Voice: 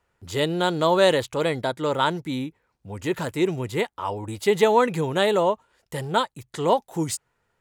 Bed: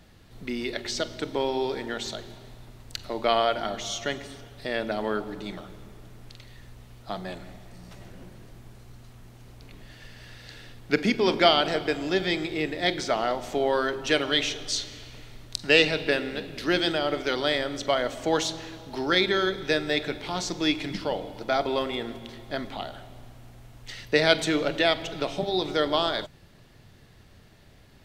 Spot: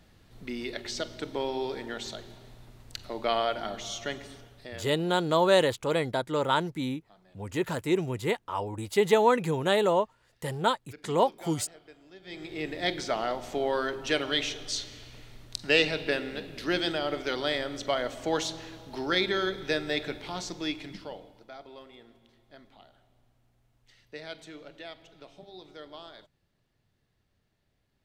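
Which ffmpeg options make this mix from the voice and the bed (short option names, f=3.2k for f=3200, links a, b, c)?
-filter_complex "[0:a]adelay=4500,volume=-3.5dB[a];[1:a]volume=17.5dB,afade=t=out:st=4.34:d=0.58:silence=0.0841395,afade=t=in:st=12.22:d=0.52:silence=0.0794328,afade=t=out:st=20.07:d=1.45:silence=0.141254[b];[a][b]amix=inputs=2:normalize=0"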